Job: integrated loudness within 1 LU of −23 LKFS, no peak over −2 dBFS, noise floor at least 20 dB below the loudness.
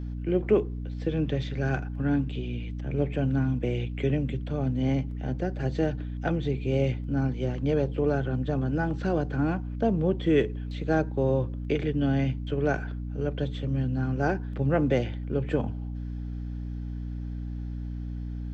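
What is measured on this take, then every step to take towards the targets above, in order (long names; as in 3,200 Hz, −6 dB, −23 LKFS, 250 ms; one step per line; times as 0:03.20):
mains hum 60 Hz; hum harmonics up to 300 Hz; level of the hum −31 dBFS; integrated loudness −28.5 LKFS; sample peak −10.5 dBFS; target loudness −23.0 LKFS
→ hum removal 60 Hz, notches 5
level +5.5 dB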